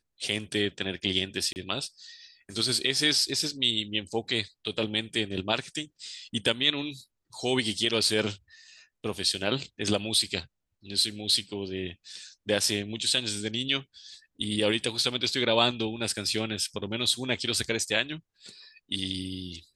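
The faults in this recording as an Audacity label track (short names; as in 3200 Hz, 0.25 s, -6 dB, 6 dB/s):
1.530000	1.560000	gap 29 ms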